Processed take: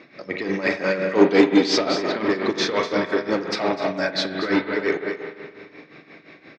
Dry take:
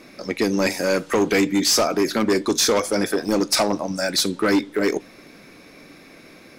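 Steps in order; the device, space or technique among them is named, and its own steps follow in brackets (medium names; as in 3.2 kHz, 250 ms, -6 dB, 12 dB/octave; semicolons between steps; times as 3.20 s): 1.15–1.78 s: ten-band graphic EQ 125 Hz -4 dB, 250 Hz +7 dB, 500 Hz +4 dB, 1 kHz +3 dB, 2 kHz -6 dB, 4 kHz +6 dB, 8 kHz +4 dB; delay 248 ms -8.5 dB; combo amplifier with spring reverb and tremolo (spring tank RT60 2.1 s, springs 42 ms, chirp 70 ms, DRR 3.5 dB; tremolo 5.7 Hz, depth 72%; cabinet simulation 100–4300 Hz, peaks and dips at 150 Hz +4 dB, 220 Hz -5 dB, 1.9 kHz +6 dB)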